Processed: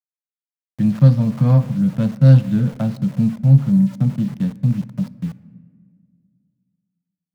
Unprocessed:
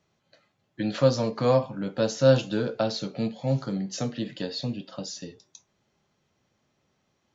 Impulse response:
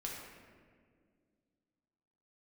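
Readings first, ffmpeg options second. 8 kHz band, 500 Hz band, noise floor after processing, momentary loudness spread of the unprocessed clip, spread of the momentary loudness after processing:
no reading, -6.5 dB, under -85 dBFS, 14 LU, 12 LU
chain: -filter_complex "[0:a]lowshelf=f=260:t=q:w=3:g=13.5,adynamicsmooth=sensitivity=2:basefreq=1000,aeval=exprs='val(0)*gte(abs(val(0)),0.02)':c=same,asplit=2[s0][s1];[1:a]atrim=start_sample=2205[s2];[s1][s2]afir=irnorm=-1:irlink=0,volume=0.188[s3];[s0][s3]amix=inputs=2:normalize=0,volume=0.75"

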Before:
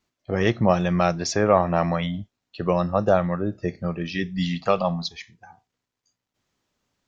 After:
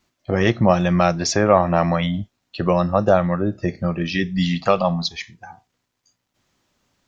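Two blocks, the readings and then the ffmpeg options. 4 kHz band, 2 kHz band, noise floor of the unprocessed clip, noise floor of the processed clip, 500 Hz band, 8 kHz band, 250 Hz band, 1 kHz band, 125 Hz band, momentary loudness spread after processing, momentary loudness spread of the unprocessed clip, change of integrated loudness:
+5.0 dB, +4.5 dB, -84 dBFS, -76 dBFS, +3.5 dB, no reading, +4.5 dB, +3.5 dB, +4.5 dB, 9 LU, 11 LU, +4.0 dB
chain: -filter_complex "[0:a]bandreject=f=440:w=12,asplit=2[s0][s1];[s1]acompressor=threshold=0.0316:ratio=6,volume=1[s2];[s0][s2]amix=inputs=2:normalize=0,volume=1.26"

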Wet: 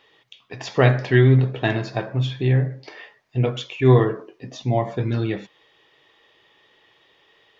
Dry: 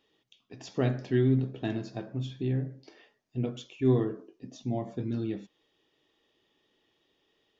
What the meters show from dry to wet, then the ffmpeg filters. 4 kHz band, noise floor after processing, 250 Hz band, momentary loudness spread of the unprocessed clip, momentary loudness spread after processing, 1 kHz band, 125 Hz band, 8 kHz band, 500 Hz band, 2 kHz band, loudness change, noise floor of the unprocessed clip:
+14.0 dB, -60 dBFS, +6.0 dB, 14 LU, 15 LU, +16.0 dB, +12.5 dB, no reading, +10.5 dB, +18.5 dB, +10.5 dB, -75 dBFS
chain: -af "equalizer=f=125:t=o:w=1:g=7,equalizer=f=250:t=o:w=1:g=-5,equalizer=f=500:t=o:w=1:g=6,equalizer=f=1000:t=o:w=1:g=9,equalizer=f=2000:t=o:w=1:g=11,equalizer=f=4000:t=o:w=1:g=5,volume=2"

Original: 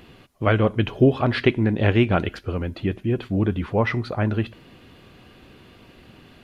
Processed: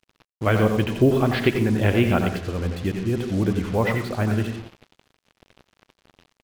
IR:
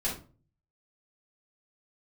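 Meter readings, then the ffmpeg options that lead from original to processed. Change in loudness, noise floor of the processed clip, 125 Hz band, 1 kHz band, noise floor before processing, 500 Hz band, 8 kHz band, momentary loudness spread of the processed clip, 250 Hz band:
0.0 dB, -82 dBFS, -0.5 dB, 0.0 dB, -51 dBFS, 0.0 dB, no reading, 8 LU, +0.5 dB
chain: -filter_complex "[0:a]asplit=2[s0][s1];[s1]adelay=90,highpass=300,lowpass=3400,asoftclip=type=hard:threshold=0.237,volume=0.447[s2];[s0][s2]amix=inputs=2:normalize=0,asplit=2[s3][s4];[1:a]atrim=start_sample=2205,adelay=78[s5];[s4][s5]afir=irnorm=-1:irlink=0,volume=0.188[s6];[s3][s6]amix=inputs=2:normalize=0,acrusher=bits=5:mix=0:aa=0.5,volume=0.841"

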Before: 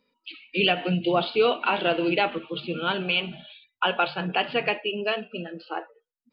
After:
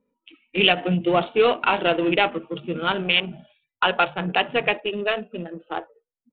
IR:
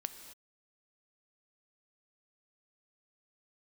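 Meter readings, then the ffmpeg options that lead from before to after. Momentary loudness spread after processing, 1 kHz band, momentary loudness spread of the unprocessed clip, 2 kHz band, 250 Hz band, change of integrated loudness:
14 LU, +3.5 dB, 14 LU, +3.5 dB, +3.0 dB, +3.5 dB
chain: -af "adynamicsmooth=sensitivity=1.5:basefreq=780,aresample=8000,aresample=44100,aemphasis=mode=production:type=75kf,volume=1.41"

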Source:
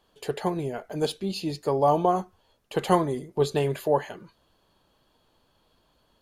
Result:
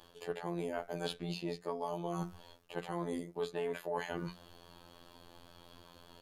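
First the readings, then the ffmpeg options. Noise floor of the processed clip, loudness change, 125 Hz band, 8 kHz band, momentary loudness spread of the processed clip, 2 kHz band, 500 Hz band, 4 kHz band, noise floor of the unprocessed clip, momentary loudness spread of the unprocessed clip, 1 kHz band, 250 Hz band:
-61 dBFS, -13.0 dB, -12.5 dB, -12.5 dB, 19 LU, -6.0 dB, -13.0 dB, -9.5 dB, -68 dBFS, 10 LU, -15.5 dB, -11.0 dB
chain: -filter_complex "[0:a]acrossover=split=160|460|1100|2300[s0][s1][s2][s3][s4];[s0]acompressor=threshold=0.00501:ratio=4[s5];[s1]acompressor=threshold=0.01:ratio=4[s6];[s2]acompressor=threshold=0.0158:ratio=4[s7];[s3]acompressor=threshold=0.00631:ratio=4[s8];[s4]acompressor=threshold=0.002:ratio=4[s9];[s5][s6][s7][s8][s9]amix=inputs=5:normalize=0,afftfilt=real='hypot(re,im)*cos(PI*b)':imag='0':win_size=2048:overlap=0.75,areverse,acompressor=threshold=0.00501:ratio=12,areverse,bandreject=f=60:t=h:w=6,bandreject=f=120:t=h:w=6,bandreject=f=180:t=h:w=6,volume=4.22"

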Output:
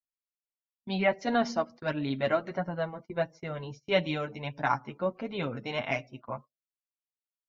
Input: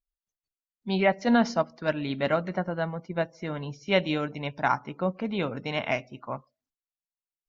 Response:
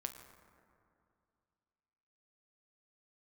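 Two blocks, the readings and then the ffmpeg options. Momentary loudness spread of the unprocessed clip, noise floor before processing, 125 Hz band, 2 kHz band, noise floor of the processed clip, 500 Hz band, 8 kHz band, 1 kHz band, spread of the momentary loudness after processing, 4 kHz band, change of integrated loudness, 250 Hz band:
12 LU, under -85 dBFS, -3.5 dB, -3.0 dB, under -85 dBFS, -2.5 dB, no reading, -3.0 dB, 11 LU, -3.0 dB, -3.5 dB, -5.5 dB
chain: -af "flanger=delay=6.5:depth=2.9:regen=3:speed=1.5:shape=triangular,agate=range=0.0794:threshold=0.00562:ratio=16:detection=peak"

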